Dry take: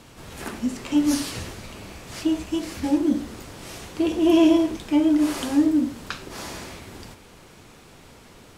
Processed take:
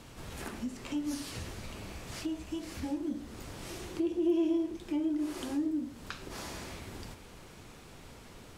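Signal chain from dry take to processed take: 3.69–5.82 bell 350 Hz +14 dB 0.21 oct; compressor 2:1, threshold -37 dBFS, peak gain reduction 18.5 dB; low shelf 85 Hz +5.5 dB; gain -4 dB

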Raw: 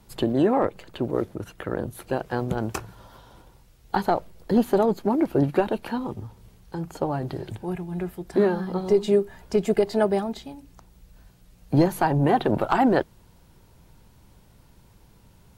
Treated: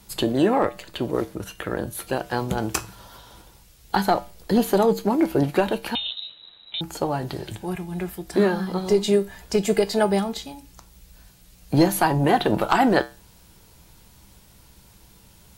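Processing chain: high shelf 2100 Hz +10.5 dB; resonator 65 Hz, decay 0.3 s, harmonics odd, mix 60%; 5.95–6.81 inverted band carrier 3900 Hz; gain +6.5 dB

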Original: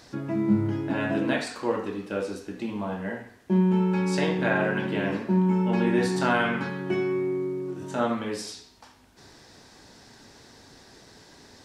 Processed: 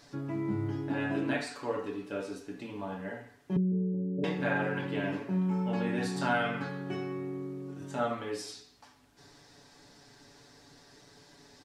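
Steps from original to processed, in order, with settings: 3.56–4.24 steep low-pass 510 Hz 48 dB/oct; comb 7 ms, depth 71%; gain -7.5 dB

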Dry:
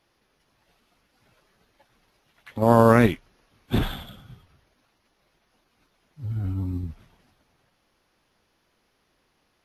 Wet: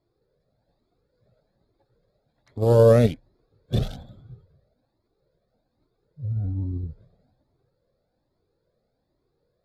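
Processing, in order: Wiener smoothing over 15 samples; graphic EQ 125/500/1000/2000/4000/8000 Hz +8/+11/-8/-6/+9/+5 dB; cascading flanger rising 1.2 Hz; gain -1.5 dB

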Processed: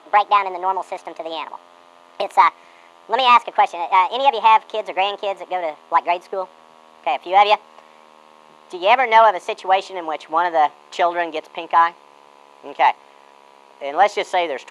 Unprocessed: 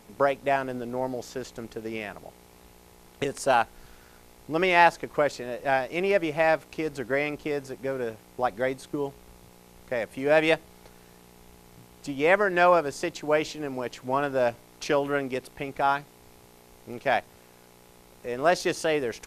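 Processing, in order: speed glide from 149% -> 113%; overdrive pedal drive 12 dB, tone 1900 Hz, clips at -4 dBFS; speaker cabinet 340–9800 Hz, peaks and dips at 510 Hz -4 dB, 940 Hz +5 dB, 1500 Hz -7 dB, 5400 Hz -8 dB, 8200 Hz -8 dB; gain +4.5 dB

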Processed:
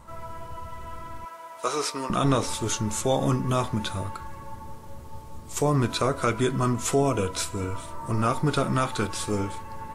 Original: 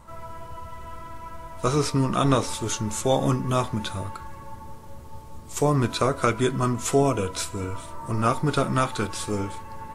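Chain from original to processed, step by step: 1.25–2.1 HPF 520 Hz 12 dB/oct; in parallel at +2.5 dB: limiter -15.5 dBFS, peak gain reduction 10 dB; on the sum: gain -7 dB

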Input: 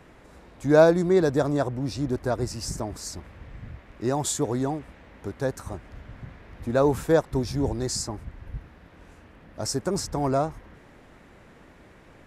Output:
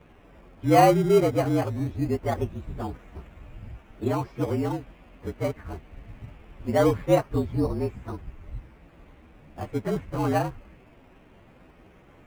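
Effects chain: inharmonic rescaling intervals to 115%; LPF 2900 Hz 24 dB/oct; in parallel at -9.5 dB: decimation with a swept rate 17×, swing 100% 0.22 Hz

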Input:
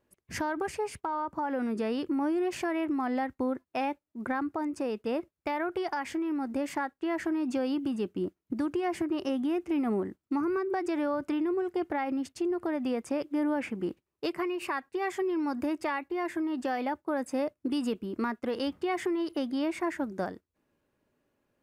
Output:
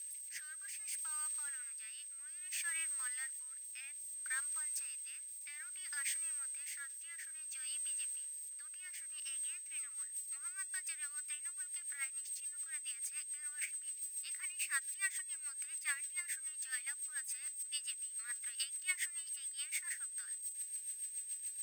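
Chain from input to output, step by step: switching spikes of -37.5 dBFS; steep high-pass 1600 Hz 36 dB/oct; whine 8300 Hz -35 dBFS; rotary speaker horn 0.6 Hz, later 7 Hz, at 9.27; upward expander 2.5:1, over -40 dBFS; gain +3 dB

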